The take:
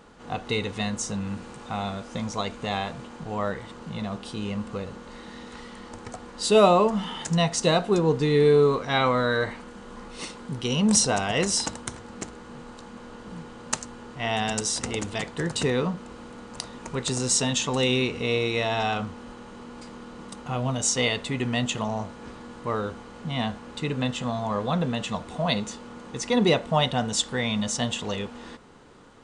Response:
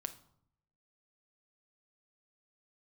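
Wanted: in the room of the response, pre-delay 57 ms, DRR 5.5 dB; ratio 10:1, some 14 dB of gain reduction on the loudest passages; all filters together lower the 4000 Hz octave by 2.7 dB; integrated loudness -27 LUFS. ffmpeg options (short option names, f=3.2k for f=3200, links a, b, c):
-filter_complex "[0:a]equalizer=f=4k:t=o:g=-3.5,acompressor=threshold=-27dB:ratio=10,asplit=2[a][b];[1:a]atrim=start_sample=2205,adelay=57[c];[b][c]afir=irnorm=-1:irlink=0,volume=-3.5dB[d];[a][d]amix=inputs=2:normalize=0,volume=5dB"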